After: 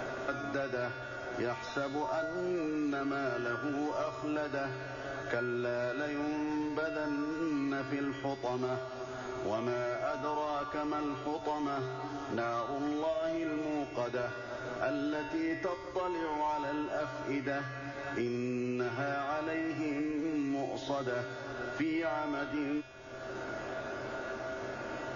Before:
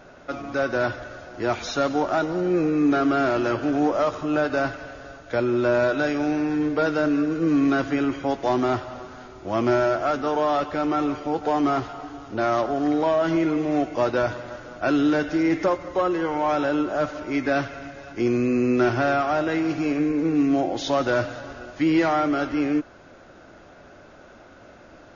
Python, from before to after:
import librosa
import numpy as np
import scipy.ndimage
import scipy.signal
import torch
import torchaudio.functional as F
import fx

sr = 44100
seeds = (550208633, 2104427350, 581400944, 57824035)

y = fx.peak_eq(x, sr, hz=160.0, db=-10.5, octaves=0.32)
y = fx.comb_fb(y, sr, f0_hz=130.0, decay_s=0.86, harmonics='odd', damping=0.0, mix_pct=90)
y = fx.band_squash(y, sr, depth_pct=100)
y = y * 10.0 ** (5.0 / 20.0)